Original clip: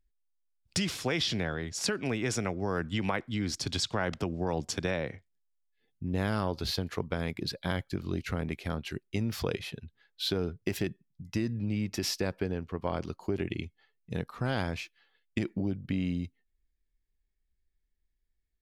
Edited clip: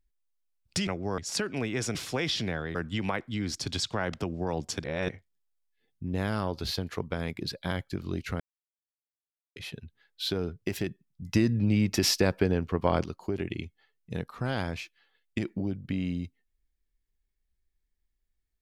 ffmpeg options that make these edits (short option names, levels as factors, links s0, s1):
-filter_complex "[0:a]asplit=11[s0][s1][s2][s3][s4][s5][s6][s7][s8][s9][s10];[s0]atrim=end=0.872[s11];[s1]atrim=start=2.438:end=2.752[s12];[s2]atrim=start=1.668:end=2.442[s13];[s3]atrim=start=0.868:end=1.672[s14];[s4]atrim=start=2.748:end=4.842[s15];[s5]atrim=start=4.838:end=5.092,asetpts=PTS-STARTPTS,areverse[s16];[s6]atrim=start=5.088:end=8.4,asetpts=PTS-STARTPTS,afade=t=out:st=3.308:d=0.004:c=hsin[s17];[s7]atrim=start=8.4:end=9.56,asetpts=PTS-STARTPTS,volume=0[s18];[s8]atrim=start=9.56:end=11.222,asetpts=PTS-STARTPTS,afade=t=in:d=0.004:c=hsin[s19];[s9]atrim=start=11.218:end=13.042,asetpts=PTS-STARTPTS,volume=2.24[s20];[s10]atrim=start=13.038[s21];[s11][s12]acrossfade=d=0.004:c1=hsin:c2=hsin[s22];[s22][s13]acrossfade=d=0.004:c1=hsin:c2=hsin[s23];[s23][s14]acrossfade=d=0.004:c1=hsin:c2=hsin[s24];[s24][s15]acrossfade=d=0.004:c1=hsin:c2=hsin[s25];[s25][s16]acrossfade=d=0.004:c1=hsin:c2=hsin[s26];[s17][s18][s19]concat=n=3:v=0:a=1[s27];[s26][s27]acrossfade=d=0.004:c1=hsin:c2=hsin[s28];[s28][s20]acrossfade=d=0.004:c1=hsin:c2=hsin[s29];[s29][s21]acrossfade=d=0.004:c1=hsin:c2=hsin"